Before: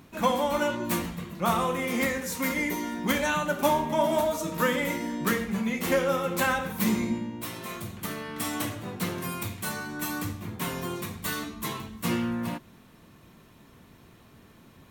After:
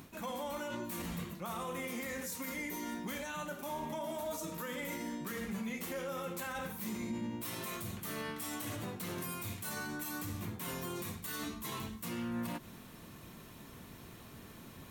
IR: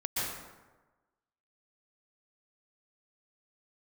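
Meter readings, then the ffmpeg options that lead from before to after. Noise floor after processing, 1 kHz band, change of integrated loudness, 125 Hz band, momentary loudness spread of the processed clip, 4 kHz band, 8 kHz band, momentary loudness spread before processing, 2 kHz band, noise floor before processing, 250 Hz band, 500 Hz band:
−53 dBFS, −13.0 dB, −11.0 dB, −9.5 dB, 13 LU, −10.0 dB, −7.5 dB, 10 LU, −12.0 dB, −55 dBFS, −11.0 dB, −13.5 dB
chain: -af "highshelf=frequency=5900:gain=7,areverse,acompressor=threshold=-33dB:ratio=12,areverse,alimiter=level_in=8.5dB:limit=-24dB:level=0:latency=1:release=82,volume=-8.5dB,volume=1.5dB"

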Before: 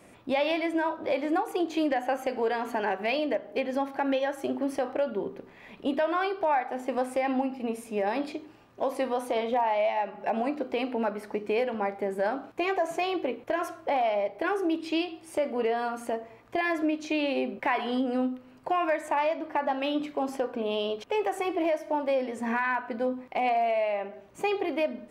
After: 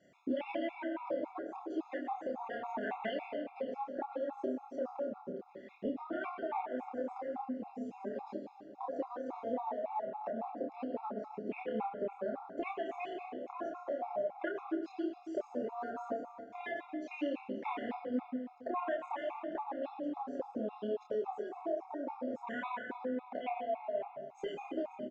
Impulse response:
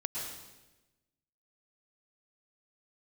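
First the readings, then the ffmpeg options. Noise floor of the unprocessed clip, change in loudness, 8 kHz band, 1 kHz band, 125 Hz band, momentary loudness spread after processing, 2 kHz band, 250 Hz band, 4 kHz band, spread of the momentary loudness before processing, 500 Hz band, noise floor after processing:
−53 dBFS, −10.5 dB, below −20 dB, −11.0 dB, can't be measured, 5 LU, −13.5 dB, −9.5 dB, −17.0 dB, 5 LU, −10.0 dB, −56 dBFS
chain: -filter_complex "[0:a]bandreject=frequency=470:width=12,afwtdn=0.0224,highpass=130,acompressor=threshold=-40dB:ratio=10,flanger=delay=1.4:depth=2.8:regen=-64:speed=0.84:shape=sinusoidal,asplit=2[link_01][link_02];[link_02]adelay=28,volume=-4dB[link_03];[link_01][link_03]amix=inputs=2:normalize=0,aecho=1:1:534:0.141,asplit=2[link_04][link_05];[1:a]atrim=start_sample=2205[link_06];[link_05][link_06]afir=irnorm=-1:irlink=0,volume=-2dB[link_07];[link_04][link_07]amix=inputs=2:normalize=0,aresample=16000,aresample=44100,afftfilt=real='re*gt(sin(2*PI*3.6*pts/sr)*(1-2*mod(floor(b*sr/1024/690),2)),0)':imag='im*gt(sin(2*PI*3.6*pts/sr)*(1-2*mod(floor(b*sr/1024/690),2)),0)':win_size=1024:overlap=0.75,volume=5dB"

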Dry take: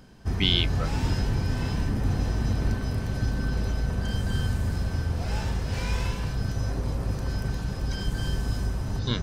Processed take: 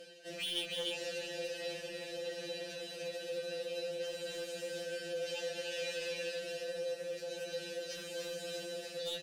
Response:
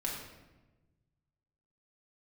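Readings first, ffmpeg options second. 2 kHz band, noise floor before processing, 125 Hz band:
−7.0 dB, −33 dBFS, −33.5 dB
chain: -filter_complex "[0:a]areverse,acompressor=mode=upward:threshold=-28dB:ratio=2.5,areverse,asplit=3[link_01][link_02][link_03];[link_01]bandpass=frequency=530:width_type=q:width=8,volume=0dB[link_04];[link_02]bandpass=frequency=1840:width_type=q:width=8,volume=-6dB[link_05];[link_03]bandpass=frequency=2480:width_type=q:width=8,volume=-9dB[link_06];[link_04][link_05][link_06]amix=inputs=3:normalize=0,lowshelf=frequency=490:gain=4,acompressor=threshold=-46dB:ratio=3,highpass=210,highshelf=frequency=5000:gain=4,asplit=2[link_07][link_08];[link_08]aecho=0:1:297:0.531[link_09];[link_07][link_09]amix=inputs=2:normalize=0,aexciter=amount=5.8:drive=6.2:freq=2800,bandreject=frequency=3300:width=24,asplit=2[link_10][link_11];[link_11]adelay=20,volume=-13dB[link_12];[link_10][link_12]amix=inputs=2:normalize=0,asoftclip=type=tanh:threshold=-39.5dB,afftfilt=real='re*2.83*eq(mod(b,8),0)':imag='im*2.83*eq(mod(b,8),0)':win_size=2048:overlap=0.75,volume=8.5dB"

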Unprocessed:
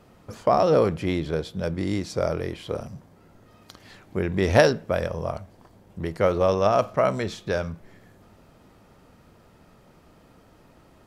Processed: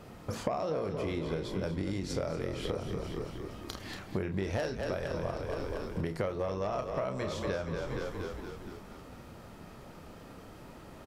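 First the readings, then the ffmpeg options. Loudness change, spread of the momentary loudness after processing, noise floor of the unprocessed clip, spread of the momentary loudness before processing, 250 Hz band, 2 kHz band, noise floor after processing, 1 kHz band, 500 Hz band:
−11.5 dB, 16 LU, −55 dBFS, 15 LU, −8.0 dB, −10.0 dB, −50 dBFS, −12.0 dB, −11.0 dB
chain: -filter_complex "[0:a]asplit=2[link_01][link_02];[link_02]adelay=31,volume=-8dB[link_03];[link_01][link_03]amix=inputs=2:normalize=0,aeval=exprs='0.708*sin(PI/2*1.58*val(0)/0.708)':channel_layout=same,asplit=2[link_04][link_05];[link_05]asplit=7[link_06][link_07][link_08][link_09][link_10][link_11][link_12];[link_06]adelay=234,afreqshift=-37,volume=-10dB[link_13];[link_07]adelay=468,afreqshift=-74,volume=-14.6dB[link_14];[link_08]adelay=702,afreqshift=-111,volume=-19.2dB[link_15];[link_09]adelay=936,afreqshift=-148,volume=-23.7dB[link_16];[link_10]adelay=1170,afreqshift=-185,volume=-28.3dB[link_17];[link_11]adelay=1404,afreqshift=-222,volume=-32.9dB[link_18];[link_12]adelay=1638,afreqshift=-259,volume=-37.5dB[link_19];[link_13][link_14][link_15][link_16][link_17][link_18][link_19]amix=inputs=7:normalize=0[link_20];[link_04][link_20]amix=inputs=2:normalize=0,acompressor=threshold=-26dB:ratio=16,volume=-4dB"

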